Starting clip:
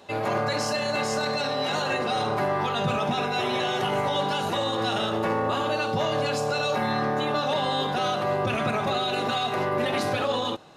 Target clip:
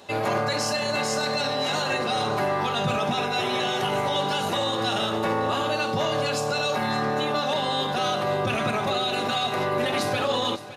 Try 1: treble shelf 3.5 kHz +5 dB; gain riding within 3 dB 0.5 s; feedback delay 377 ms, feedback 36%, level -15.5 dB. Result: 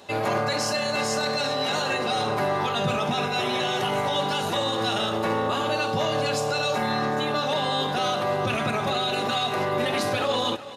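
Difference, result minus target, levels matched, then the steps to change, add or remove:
echo 186 ms early
change: feedback delay 563 ms, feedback 36%, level -15.5 dB

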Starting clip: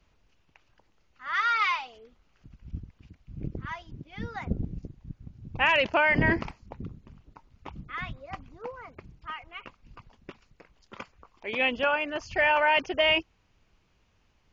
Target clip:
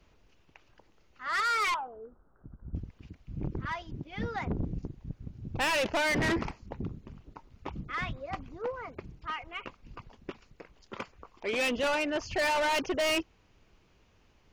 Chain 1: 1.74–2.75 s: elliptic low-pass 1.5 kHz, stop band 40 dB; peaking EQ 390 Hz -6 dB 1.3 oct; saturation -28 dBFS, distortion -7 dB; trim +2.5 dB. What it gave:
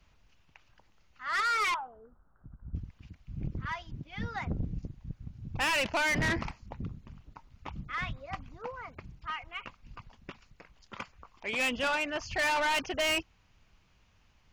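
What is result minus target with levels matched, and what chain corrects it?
500 Hz band -4.5 dB
1.74–2.75 s: elliptic low-pass 1.5 kHz, stop band 40 dB; peaking EQ 390 Hz +4.5 dB 1.3 oct; saturation -28 dBFS, distortion -6 dB; trim +2.5 dB

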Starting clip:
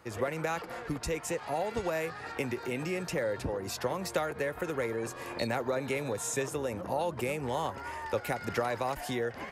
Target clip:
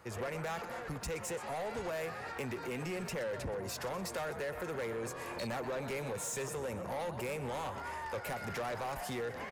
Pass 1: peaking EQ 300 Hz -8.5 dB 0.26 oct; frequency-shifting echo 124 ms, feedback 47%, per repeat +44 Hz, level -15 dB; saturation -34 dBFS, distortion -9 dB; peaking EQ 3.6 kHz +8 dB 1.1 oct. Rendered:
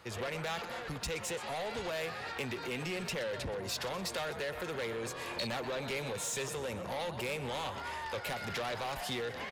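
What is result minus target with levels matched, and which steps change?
4 kHz band +7.0 dB
change: second peaking EQ 3.6 kHz -2.5 dB 1.1 oct

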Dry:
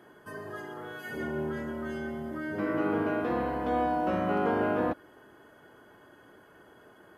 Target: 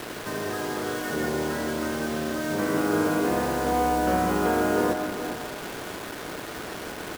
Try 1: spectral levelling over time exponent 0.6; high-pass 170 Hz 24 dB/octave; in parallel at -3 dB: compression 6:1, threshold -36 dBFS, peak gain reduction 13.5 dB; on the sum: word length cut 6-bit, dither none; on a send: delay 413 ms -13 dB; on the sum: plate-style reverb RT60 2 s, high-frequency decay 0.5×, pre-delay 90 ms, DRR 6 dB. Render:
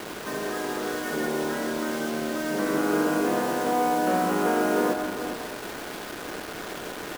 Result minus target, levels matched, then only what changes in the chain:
125 Hz band -5.0 dB
change: high-pass 43 Hz 24 dB/octave

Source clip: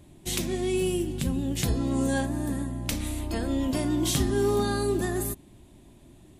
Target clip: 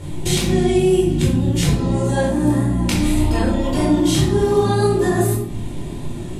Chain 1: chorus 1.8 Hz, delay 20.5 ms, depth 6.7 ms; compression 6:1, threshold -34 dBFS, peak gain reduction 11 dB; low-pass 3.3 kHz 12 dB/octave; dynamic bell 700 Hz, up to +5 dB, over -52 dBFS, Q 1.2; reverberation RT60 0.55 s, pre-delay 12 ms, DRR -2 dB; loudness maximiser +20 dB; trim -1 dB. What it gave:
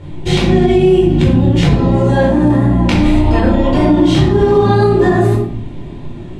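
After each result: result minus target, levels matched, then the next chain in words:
8 kHz band -14.5 dB; compression: peak gain reduction -7 dB
chorus 1.8 Hz, delay 20.5 ms, depth 6.7 ms; compression 6:1, threshold -34 dBFS, peak gain reduction 11 dB; low-pass 11 kHz 12 dB/octave; dynamic bell 700 Hz, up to +5 dB, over -52 dBFS, Q 1.2; reverberation RT60 0.55 s, pre-delay 12 ms, DRR -2 dB; loudness maximiser +20 dB; trim -1 dB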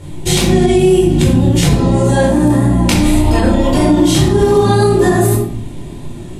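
compression: peak gain reduction -7 dB
chorus 1.8 Hz, delay 20.5 ms, depth 6.7 ms; compression 6:1, threshold -42.5 dBFS, peak gain reduction 18 dB; low-pass 11 kHz 12 dB/octave; dynamic bell 700 Hz, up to +5 dB, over -52 dBFS, Q 1.2; reverberation RT60 0.55 s, pre-delay 12 ms, DRR -2 dB; loudness maximiser +20 dB; trim -1 dB

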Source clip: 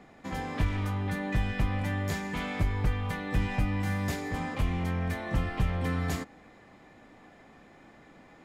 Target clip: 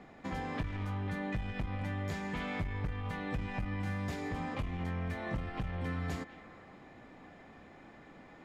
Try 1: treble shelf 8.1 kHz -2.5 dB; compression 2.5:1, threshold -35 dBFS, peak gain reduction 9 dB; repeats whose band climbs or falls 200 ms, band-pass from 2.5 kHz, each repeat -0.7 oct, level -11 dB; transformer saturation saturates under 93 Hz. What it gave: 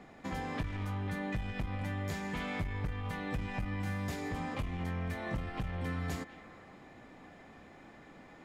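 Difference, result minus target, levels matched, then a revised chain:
8 kHz band +4.5 dB
treble shelf 8.1 kHz -13 dB; compression 2.5:1, threshold -35 dBFS, peak gain reduction 9 dB; repeats whose band climbs or falls 200 ms, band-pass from 2.5 kHz, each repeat -0.7 oct, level -11 dB; transformer saturation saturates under 93 Hz

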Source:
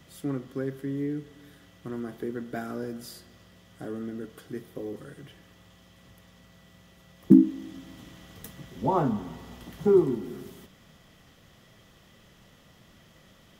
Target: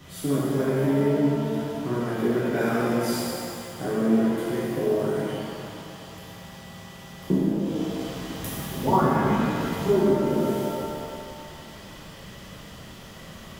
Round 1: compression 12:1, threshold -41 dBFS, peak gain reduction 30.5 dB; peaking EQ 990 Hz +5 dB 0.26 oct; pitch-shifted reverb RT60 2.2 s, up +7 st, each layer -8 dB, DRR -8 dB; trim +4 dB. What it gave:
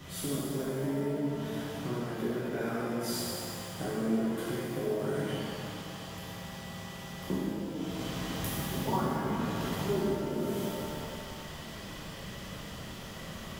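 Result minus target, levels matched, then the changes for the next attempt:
compression: peak gain reduction +11 dB
change: compression 12:1, threshold -29 dBFS, peak gain reduction 19.5 dB

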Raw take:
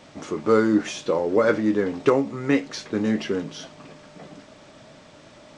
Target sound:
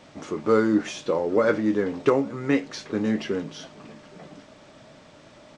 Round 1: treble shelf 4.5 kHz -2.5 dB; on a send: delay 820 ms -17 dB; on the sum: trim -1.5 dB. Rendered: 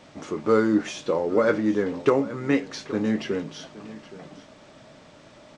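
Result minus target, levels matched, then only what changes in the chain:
echo-to-direct +8.5 dB
change: delay 820 ms -25.5 dB

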